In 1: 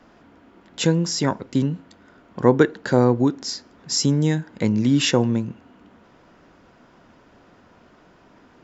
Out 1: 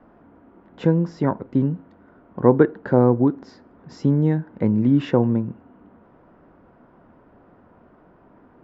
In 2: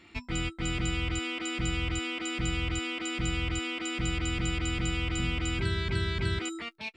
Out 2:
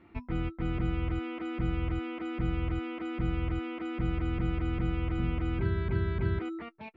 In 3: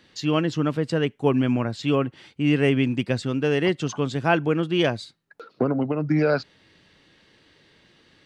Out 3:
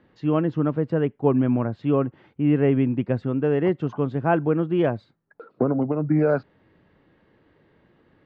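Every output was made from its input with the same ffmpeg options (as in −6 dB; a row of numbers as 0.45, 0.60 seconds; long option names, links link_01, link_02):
-af "lowpass=1200,volume=1dB"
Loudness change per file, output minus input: +0.5, −1.5, +0.5 LU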